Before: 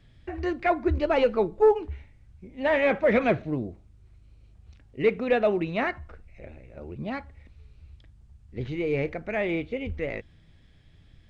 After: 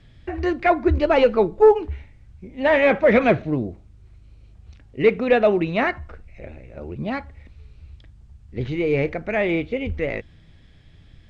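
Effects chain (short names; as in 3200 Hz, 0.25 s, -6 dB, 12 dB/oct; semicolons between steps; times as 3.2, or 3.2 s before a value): LPF 9100 Hz; gain +6 dB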